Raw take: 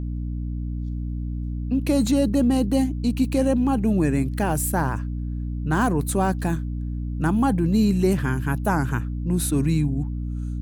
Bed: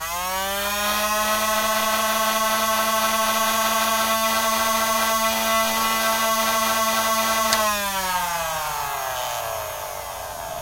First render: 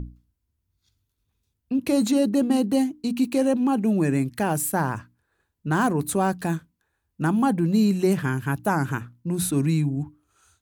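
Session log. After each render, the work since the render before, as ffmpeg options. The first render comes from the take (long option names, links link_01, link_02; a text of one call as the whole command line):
ffmpeg -i in.wav -af "bandreject=frequency=60:width_type=h:width=6,bandreject=frequency=120:width_type=h:width=6,bandreject=frequency=180:width_type=h:width=6,bandreject=frequency=240:width_type=h:width=6,bandreject=frequency=300:width_type=h:width=6" out.wav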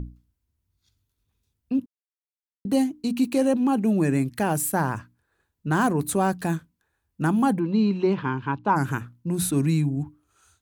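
ffmpeg -i in.wav -filter_complex "[0:a]asplit=3[link_01][link_02][link_03];[link_01]afade=type=out:start_time=7.58:duration=0.02[link_04];[link_02]highpass=120,equalizer=frequency=160:width_type=q:width=4:gain=-7,equalizer=frequency=670:width_type=q:width=4:gain=-7,equalizer=frequency=970:width_type=q:width=4:gain=9,equalizer=frequency=1800:width_type=q:width=4:gain=-7,lowpass=frequency=3900:width=0.5412,lowpass=frequency=3900:width=1.3066,afade=type=in:start_time=7.58:duration=0.02,afade=type=out:start_time=8.75:duration=0.02[link_05];[link_03]afade=type=in:start_time=8.75:duration=0.02[link_06];[link_04][link_05][link_06]amix=inputs=3:normalize=0,asplit=3[link_07][link_08][link_09];[link_07]atrim=end=1.86,asetpts=PTS-STARTPTS,afade=type=out:start_time=1.856:duration=0.004:curve=hsin[link_10];[link_08]atrim=start=1.86:end=2.65,asetpts=PTS-STARTPTS,volume=0[link_11];[link_09]atrim=start=2.65,asetpts=PTS-STARTPTS,afade=type=in:duration=0.004:curve=hsin[link_12];[link_10][link_11][link_12]concat=n=3:v=0:a=1" out.wav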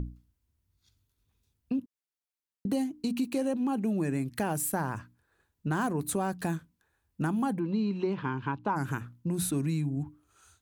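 ffmpeg -i in.wav -af "acompressor=threshold=-29dB:ratio=3" out.wav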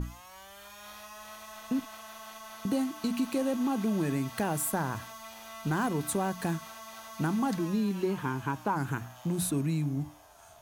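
ffmpeg -i in.wav -i bed.wav -filter_complex "[1:a]volume=-25dB[link_01];[0:a][link_01]amix=inputs=2:normalize=0" out.wav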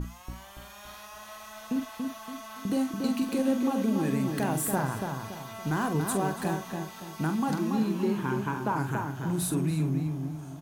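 ffmpeg -i in.wav -filter_complex "[0:a]asplit=2[link_01][link_02];[link_02]adelay=45,volume=-8.5dB[link_03];[link_01][link_03]amix=inputs=2:normalize=0,asplit=2[link_04][link_05];[link_05]adelay=284,lowpass=frequency=1800:poles=1,volume=-4dB,asplit=2[link_06][link_07];[link_07]adelay=284,lowpass=frequency=1800:poles=1,volume=0.39,asplit=2[link_08][link_09];[link_09]adelay=284,lowpass=frequency=1800:poles=1,volume=0.39,asplit=2[link_10][link_11];[link_11]adelay=284,lowpass=frequency=1800:poles=1,volume=0.39,asplit=2[link_12][link_13];[link_13]adelay=284,lowpass=frequency=1800:poles=1,volume=0.39[link_14];[link_04][link_06][link_08][link_10][link_12][link_14]amix=inputs=6:normalize=0" out.wav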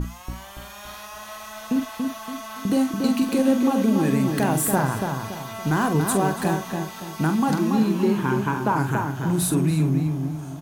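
ffmpeg -i in.wav -af "volume=7dB" out.wav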